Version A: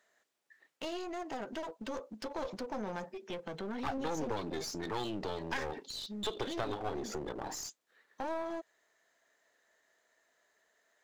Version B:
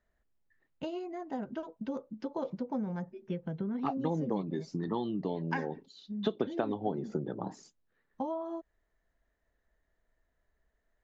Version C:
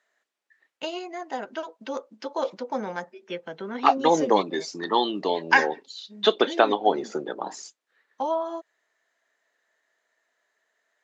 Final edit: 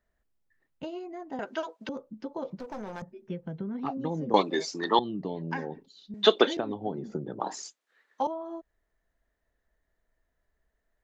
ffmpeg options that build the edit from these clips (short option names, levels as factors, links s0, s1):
-filter_complex "[2:a]asplit=4[s0][s1][s2][s3];[1:a]asplit=6[s4][s5][s6][s7][s8][s9];[s4]atrim=end=1.392[s10];[s0]atrim=start=1.388:end=1.892[s11];[s5]atrim=start=1.888:end=2.602[s12];[0:a]atrim=start=2.598:end=3.022[s13];[s6]atrim=start=3.018:end=4.342[s14];[s1]atrim=start=4.338:end=4.992[s15];[s7]atrim=start=4.988:end=6.142[s16];[s2]atrim=start=6.138:end=6.572[s17];[s8]atrim=start=6.568:end=7.402[s18];[s3]atrim=start=7.398:end=8.272[s19];[s9]atrim=start=8.268[s20];[s10][s11]acrossfade=d=0.004:c1=hsin:c2=hsin[s21];[s21][s12]acrossfade=d=0.004:c1=hsin:c2=hsin[s22];[s22][s13]acrossfade=d=0.004:c1=hsin:c2=hsin[s23];[s23][s14]acrossfade=d=0.004:c1=hsin:c2=hsin[s24];[s24][s15]acrossfade=d=0.004:c1=hsin:c2=hsin[s25];[s25][s16]acrossfade=d=0.004:c1=hsin:c2=hsin[s26];[s26][s17]acrossfade=d=0.004:c1=hsin:c2=hsin[s27];[s27][s18]acrossfade=d=0.004:c1=hsin:c2=hsin[s28];[s28][s19]acrossfade=d=0.004:c1=hsin:c2=hsin[s29];[s29][s20]acrossfade=d=0.004:c1=hsin:c2=hsin"